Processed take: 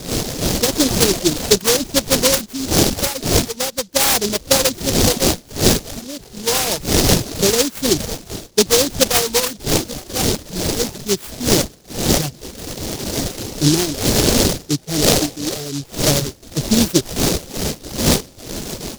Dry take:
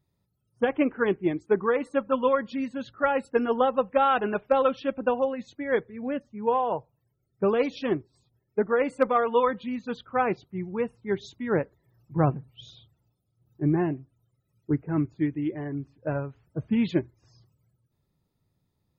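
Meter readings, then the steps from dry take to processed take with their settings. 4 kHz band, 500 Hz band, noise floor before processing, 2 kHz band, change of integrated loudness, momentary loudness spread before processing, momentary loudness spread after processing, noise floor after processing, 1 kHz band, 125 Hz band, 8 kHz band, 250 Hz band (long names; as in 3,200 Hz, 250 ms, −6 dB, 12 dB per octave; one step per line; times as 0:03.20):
+27.5 dB, +6.0 dB, −76 dBFS, +9.0 dB, +10.0 dB, 10 LU, 11 LU, −43 dBFS, +1.5 dB, +11.5 dB, can't be measured, +8.5 dB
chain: wind on the microphone 550 Hz −24 dBFS
gain on a spectral selection 0:14.87–0:15.85, 390–830 Hz +6 dB
automatic gain control gain up to 16 dB
reverb reduction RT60 0.64 s
high-shelf EQ 4,100 Hz +7 dB
short delay modulated by noise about 5,000 Hz, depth 0.26 ms
level −1 dB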